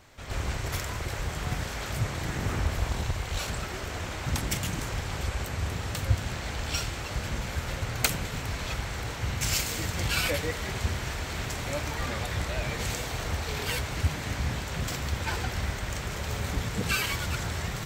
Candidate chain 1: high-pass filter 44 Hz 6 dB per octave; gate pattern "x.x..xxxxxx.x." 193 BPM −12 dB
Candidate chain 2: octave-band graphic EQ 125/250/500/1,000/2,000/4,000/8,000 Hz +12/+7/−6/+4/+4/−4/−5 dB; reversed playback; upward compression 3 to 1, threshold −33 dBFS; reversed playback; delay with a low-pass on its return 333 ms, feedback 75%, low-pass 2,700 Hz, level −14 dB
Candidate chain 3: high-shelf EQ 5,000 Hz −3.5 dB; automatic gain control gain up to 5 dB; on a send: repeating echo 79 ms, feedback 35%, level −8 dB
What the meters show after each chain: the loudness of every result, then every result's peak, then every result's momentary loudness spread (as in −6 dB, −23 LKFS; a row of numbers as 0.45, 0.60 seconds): −33.0, −25.0, −26.0 LKFS; −5.5, −4.0, −4.0 dBFS; 8, 5, 5 LU